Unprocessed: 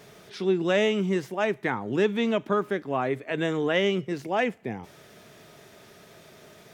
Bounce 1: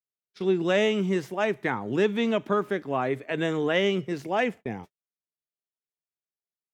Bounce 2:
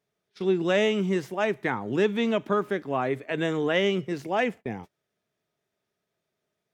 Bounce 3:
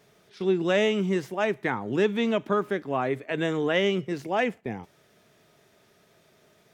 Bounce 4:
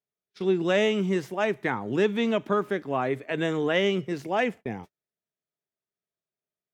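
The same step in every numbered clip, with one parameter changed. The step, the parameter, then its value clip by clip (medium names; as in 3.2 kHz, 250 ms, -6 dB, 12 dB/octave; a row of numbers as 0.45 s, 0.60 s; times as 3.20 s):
gate, range: -59 dB, -31 dB, -10 dB, -47 dB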